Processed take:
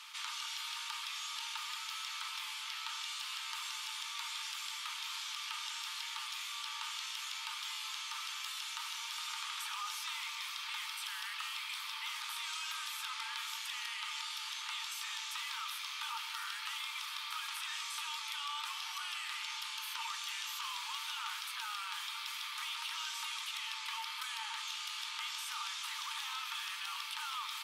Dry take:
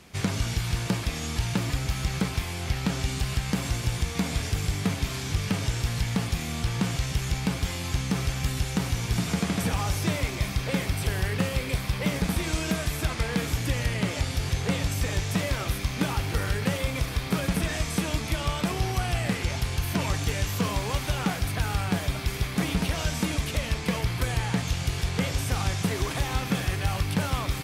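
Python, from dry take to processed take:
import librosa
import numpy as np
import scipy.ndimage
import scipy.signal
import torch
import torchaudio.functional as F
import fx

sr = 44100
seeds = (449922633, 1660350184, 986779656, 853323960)

y = scipy.signal.sosfilt(scipy.signal.cheby1(6, 9, 870.0, 'highpass', fs=sr, output='sos'), x)
y = fx.env_flatten(y, sr, amount_pct=50)
y = y * 10.0 ** (-4.5 / 20.0)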